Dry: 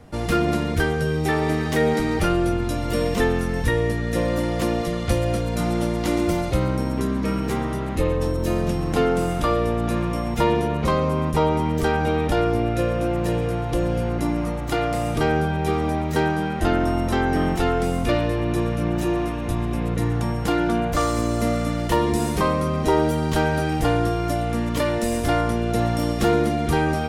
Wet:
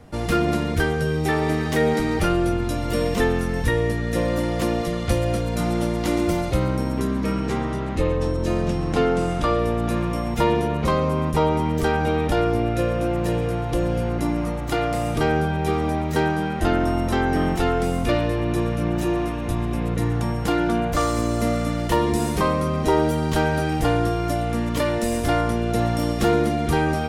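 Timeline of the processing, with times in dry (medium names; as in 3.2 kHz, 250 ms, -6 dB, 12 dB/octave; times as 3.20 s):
7.32–9.59 s: low-pass 8.1 kHz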